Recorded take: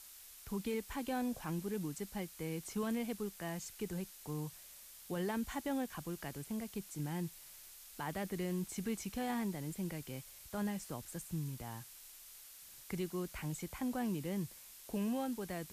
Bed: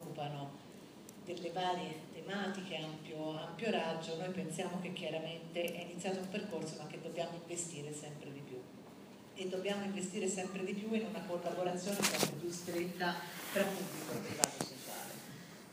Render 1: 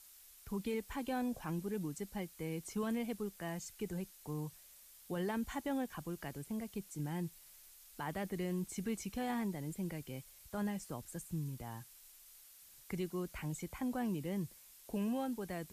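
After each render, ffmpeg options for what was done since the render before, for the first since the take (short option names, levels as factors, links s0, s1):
-af "afftdn=nr=6:nf=-56"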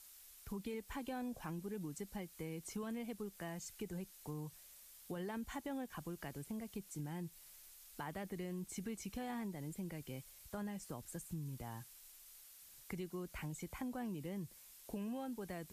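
-af "acompressor=threshold=0.00794:ratio=3"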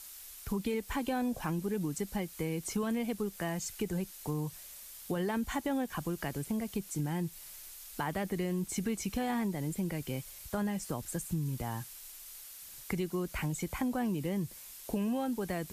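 -af "volume=3.35"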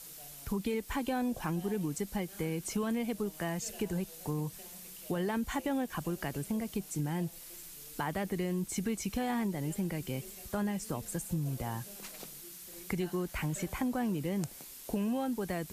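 -filter_complex "[1:a]volume=0.168[s0];[0:a][s0]amix=inputs=2:normalize=0"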